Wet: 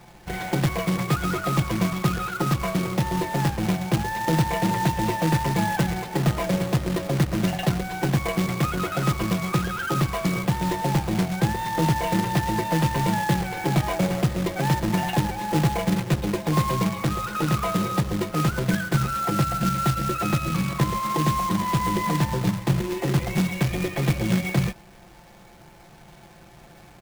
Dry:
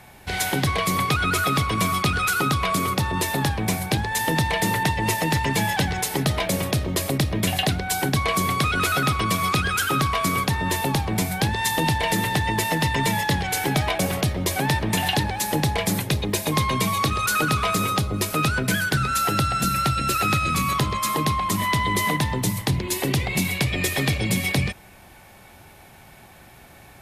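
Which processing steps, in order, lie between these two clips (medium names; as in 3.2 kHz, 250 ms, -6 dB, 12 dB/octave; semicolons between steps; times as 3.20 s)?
tape spacing loss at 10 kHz 43 dB; comb 5.8 ms, depth 70%; companded quantiser 4-bit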